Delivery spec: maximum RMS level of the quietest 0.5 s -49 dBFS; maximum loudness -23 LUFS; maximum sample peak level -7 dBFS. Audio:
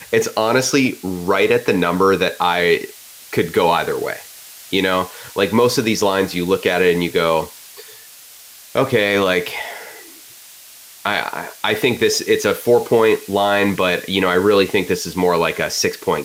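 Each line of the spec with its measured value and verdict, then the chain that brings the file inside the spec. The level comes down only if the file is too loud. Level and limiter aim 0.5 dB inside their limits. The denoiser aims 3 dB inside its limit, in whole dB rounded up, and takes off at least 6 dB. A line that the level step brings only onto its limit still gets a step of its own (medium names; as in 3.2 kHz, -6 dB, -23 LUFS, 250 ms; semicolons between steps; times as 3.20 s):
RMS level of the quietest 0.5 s -41 dBFS: fail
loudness -17.5 LUFS: fail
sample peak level -3.5 dBFS: fail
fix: noise reduction 6 dB, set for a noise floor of -41 dBFS; trim -6 dB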